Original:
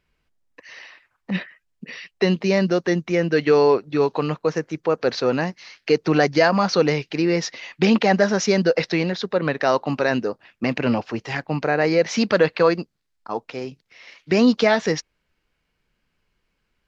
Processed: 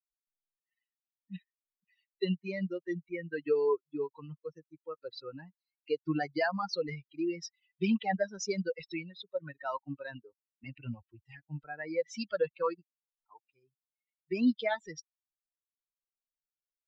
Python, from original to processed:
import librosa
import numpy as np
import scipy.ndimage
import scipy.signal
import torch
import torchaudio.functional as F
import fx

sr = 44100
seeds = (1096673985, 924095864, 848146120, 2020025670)

y = fx.bin_expand(x, sr, power=3.0)
y = y * 10.0 ** (-8.0 / 20.0)